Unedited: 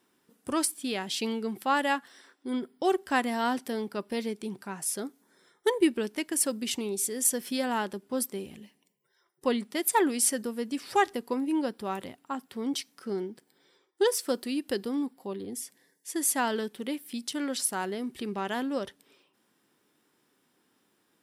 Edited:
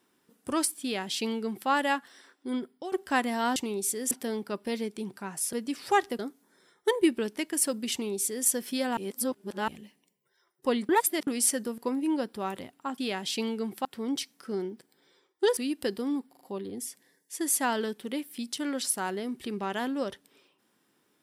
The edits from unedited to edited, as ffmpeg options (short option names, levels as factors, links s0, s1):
-filter_complex "[0:a]asplit=17[s0][s1][s2][s3][s4][s5][s6][s7][s8][s9][s10][s11][s12][s13][s14][s15][s16];[s0]atrim=end=2.92,asetpts=PTS-STARTPTS,afade=t=out:st=2.47:d=0.45:c=qsin:silence=0.1[s17];[s1]atrim=start=2.92:end=3.562,asetpts=PTS-STARTPTS,afade=t=in:d=0.004:c=hsin:silence=0.1[s18];[s2]atrim=start=6.708:end=7.262[s19];[s3]atrim=start=3.558:end=4.982[s20];[s4]atrim=start=10.568:end=11.232[s21];[s5]atrim=start=4.978:end=7.762[s22];[s6]atrim=start=7.758:end=8.472,asetpts=PTS-STARTPTS,areverse[s23];[s7]atrim=start=8.468:end=9.682[s24];[s8]atrim=start=9.678:end=10.062,asetpts=PTS-STARTPTS,areverse[s25];[s9]atrim=start=10.058:end=10.572[s26];[s10]atrim=start=11.228:end=12.432[s27];[s11]atrim=start=0.818:end=1.692[s28];[s12]atrim=start=12.428:end=14.152[s29];[s13]atrim=start=14.438:end=15.202[s30];[s14]atrim=start=15.158:end=15.202[s31];[s15]atrim=start=15.158:end=15.202[s32];[s16]atrim=start=15.158[s33];[s17][s18]concat=n=2:v=0:a=1[s34];[s34][s19]acrossfade=d=0.004:c1=hsin:c2=hsin[s35];[s35][s20]acrossfade=d=0.004:c1=hsin:c2=hsin[s36];[s36][s21]acrossfade=d=0.004:c1=hsin:c2=hsin[s37];[s37][s22]acrossfade=d=0.004:c1=hsin:c2=hsin[s38];[s38][s23]acrossfade=d=0.004:c1=hsin:c2=hsin[s39];[s39][s24]acrossfade=d=0.004:c1=hsin:c2=hsin[s40];[s40][s25]acrossfade=d=0.004:c1=hsin:c2=hsin[s41];[s41][s26]acrossfade=d=0.004:c1=hsin:c2=hsin[s42];[s42][s27]acrossfade=d=0.004:c1=hsin:c2=hsin[s43];[s43][s28]acrossfade=d=0.004:c1=hsin:c2=hsin[s44];[s44][s29]acrossfade=d=0.004:c1=hsin:c2=hsin[s45];[s45][s30]acrossfade=d=0.004:c1=hsin:c2=hsin[s46];[s46][s31]acrossfade=d=0.004:c1=hsin:c2=hsin[s47];[s47][s32]acrossfade=d=0.004:c1=hsin:c2=hsin[s48];[s48][s33]acrossfade=d=0.004:c1=hsin:c2=hsin"